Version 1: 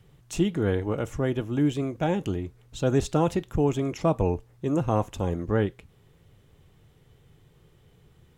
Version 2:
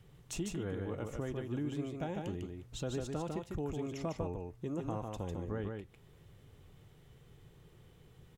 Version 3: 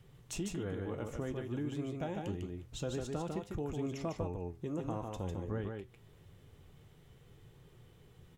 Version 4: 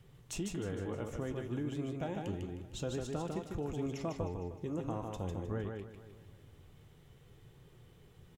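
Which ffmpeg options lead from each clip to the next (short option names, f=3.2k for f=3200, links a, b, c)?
-af "acompressor=threshold=-38dB:ratio=2.5,aecho=1:1:150:0.631,volume=-3dB"
-af "flanger=delay=7.3:depth=6.4:regen=75:speed=0.52:shape=triangular,volume=4.5dB"
-af "aecho=1:1:309|618|927:0.188|0.0622|0.0205"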